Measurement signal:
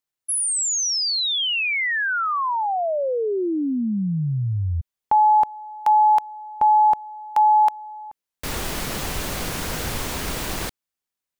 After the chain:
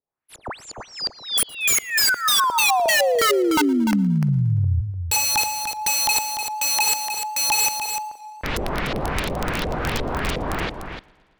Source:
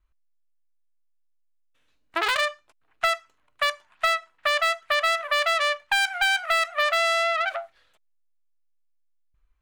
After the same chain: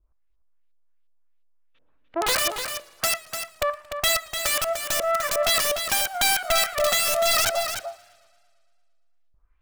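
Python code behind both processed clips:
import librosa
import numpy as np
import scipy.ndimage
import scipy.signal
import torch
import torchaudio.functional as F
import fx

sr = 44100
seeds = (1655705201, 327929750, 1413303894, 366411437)

p1 = scipy.signal.medfilt(x, 5)
p2 = fx.filter_lfo_lowpass(p1, sr, shape='saw_up', hz=2.8, low_hz=460.0, high_hz=4100.0, q=1.6)
p3 = (np.mod(10.0 ** (18.0 / 20.0) * p2 + 1.0, 2.0) - 1.0) / 10.0 ** (18.0 / 20.0)
p4 = p3 + fx.echo_single(p3, sr, ms=297, db=-8.0, dry=0)
p5 = fx.echo_warbled(p4, sr, ms=114, feedback_pct=65, rate_hz=2.8, cents=80, wet_db=-23.5)
y = p5 * 10.0 ** (3.0 / 20.0)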